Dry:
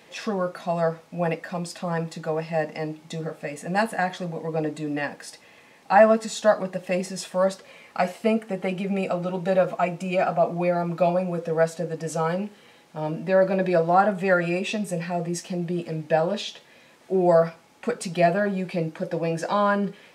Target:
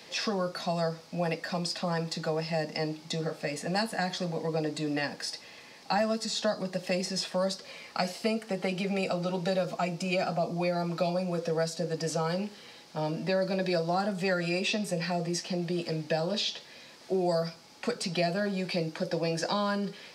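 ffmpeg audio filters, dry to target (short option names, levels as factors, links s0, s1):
-filter_complex "[0:a]acrossover=split=150|380|3500[s0][s1][s2][s3];[s0]acompressor=threshold=0.00794:ratio=4[s4];[s1]acompressor=threshold=0.0178:ratio=4[s5];[s2]acompressor=threshold=0.0282:ratio=4[s6];[s3]acompressor=threshold=0.00708:ratio=4[s7];[s4][s5][s6][s7]amix=inputs=4:normalize=0,equalizer=f=4800:t=o:w=0.73:g=12.5"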